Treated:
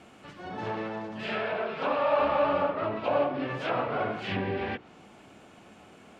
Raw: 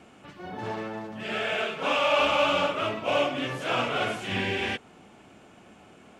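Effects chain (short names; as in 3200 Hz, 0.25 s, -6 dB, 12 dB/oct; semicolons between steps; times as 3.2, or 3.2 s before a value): treble ducked by the level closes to 1200 Hz, closed at -24.5 dBFS; notches 60/120/180/240/300/360/420 Hz; harmoniser +7 st -13 dB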